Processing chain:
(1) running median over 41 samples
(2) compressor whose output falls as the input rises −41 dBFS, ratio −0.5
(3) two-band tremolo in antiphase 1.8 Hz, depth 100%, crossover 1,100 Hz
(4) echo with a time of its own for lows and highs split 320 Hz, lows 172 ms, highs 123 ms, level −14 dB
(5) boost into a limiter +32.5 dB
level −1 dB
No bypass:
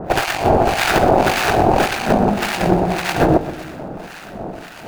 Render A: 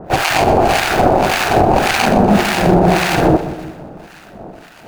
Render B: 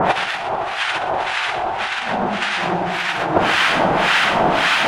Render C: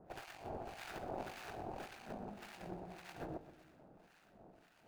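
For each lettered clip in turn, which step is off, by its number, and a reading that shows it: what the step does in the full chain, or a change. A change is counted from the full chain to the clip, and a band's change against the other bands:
2, change in crest factor −3.0 dB
1, 4 kHz band +9.5 dB
5, change in crest factor +4.5 dB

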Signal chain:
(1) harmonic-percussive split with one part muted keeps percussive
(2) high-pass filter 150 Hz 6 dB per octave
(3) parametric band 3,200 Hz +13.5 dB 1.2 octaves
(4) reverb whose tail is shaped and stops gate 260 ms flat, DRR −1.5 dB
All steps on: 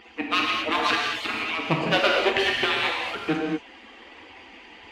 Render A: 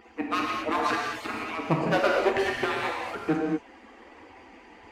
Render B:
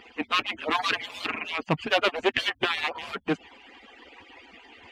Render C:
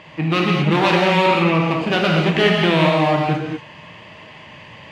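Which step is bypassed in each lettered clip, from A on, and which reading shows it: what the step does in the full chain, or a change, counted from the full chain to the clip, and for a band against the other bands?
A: 3, 4 kHz band −11.0 dB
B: 4, change in crest factor +2.5 dB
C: 1, 125 Hz band +10.5 dB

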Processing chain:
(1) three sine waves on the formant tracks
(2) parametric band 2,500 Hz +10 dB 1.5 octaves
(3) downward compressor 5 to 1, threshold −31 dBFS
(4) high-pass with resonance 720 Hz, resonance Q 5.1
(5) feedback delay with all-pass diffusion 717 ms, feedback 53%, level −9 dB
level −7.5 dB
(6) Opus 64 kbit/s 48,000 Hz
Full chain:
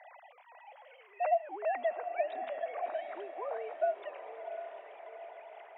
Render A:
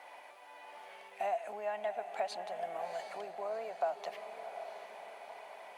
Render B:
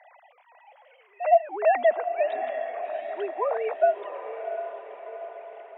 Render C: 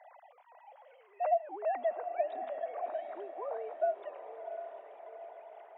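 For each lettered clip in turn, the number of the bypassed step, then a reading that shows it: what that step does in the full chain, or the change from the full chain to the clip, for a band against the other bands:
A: 1, 500 Hz band −1.5 dB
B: 3, change in integrated loudness +10.0 LU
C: 2, 2 kHz band −6.5 dB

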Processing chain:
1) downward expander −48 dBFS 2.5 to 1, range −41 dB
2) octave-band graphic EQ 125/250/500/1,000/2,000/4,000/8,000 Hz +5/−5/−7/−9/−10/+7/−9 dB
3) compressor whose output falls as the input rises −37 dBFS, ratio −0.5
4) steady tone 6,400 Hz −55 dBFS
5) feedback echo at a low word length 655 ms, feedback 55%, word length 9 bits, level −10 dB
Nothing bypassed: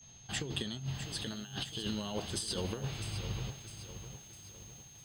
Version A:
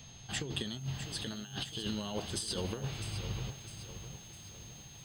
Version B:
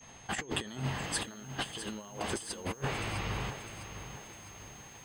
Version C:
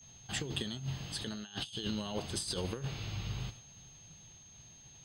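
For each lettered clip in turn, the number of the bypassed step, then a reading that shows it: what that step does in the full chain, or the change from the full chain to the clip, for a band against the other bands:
1, change in momentary loudness spread −1 LU
2, 1 kHz band +8.0 dB
5, change in momentary loudness spread +4 LU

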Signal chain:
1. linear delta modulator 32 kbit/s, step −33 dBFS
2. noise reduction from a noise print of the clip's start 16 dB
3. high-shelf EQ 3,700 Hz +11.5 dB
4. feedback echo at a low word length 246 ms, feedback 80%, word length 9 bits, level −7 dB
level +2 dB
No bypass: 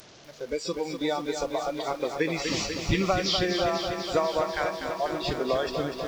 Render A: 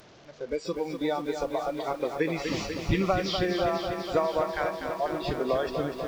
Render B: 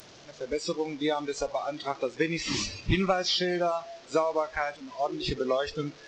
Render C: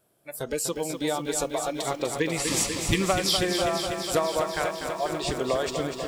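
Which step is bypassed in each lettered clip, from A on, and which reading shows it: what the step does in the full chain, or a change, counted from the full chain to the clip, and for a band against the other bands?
3, 8 kHz band −7.5 dB
4, change in momentary loudness spread +1 LU
1, 8 kHz band +9.5 dB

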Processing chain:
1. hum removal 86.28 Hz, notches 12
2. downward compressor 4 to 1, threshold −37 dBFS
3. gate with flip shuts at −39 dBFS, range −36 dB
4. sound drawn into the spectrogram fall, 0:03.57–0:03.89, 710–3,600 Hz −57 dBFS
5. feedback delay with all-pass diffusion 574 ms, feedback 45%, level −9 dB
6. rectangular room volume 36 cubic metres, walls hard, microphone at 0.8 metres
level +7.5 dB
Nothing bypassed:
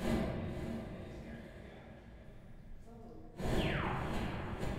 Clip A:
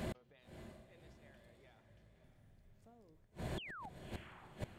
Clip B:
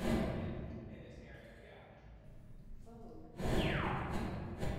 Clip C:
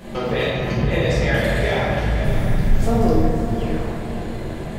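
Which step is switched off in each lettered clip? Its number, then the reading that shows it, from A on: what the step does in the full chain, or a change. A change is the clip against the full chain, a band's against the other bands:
6, echo-to-direct ratio 10.0 dB to −8.0 dB
5, change in momentary loudness spread +2 LU
3, change in momentary loudness spread −11 LU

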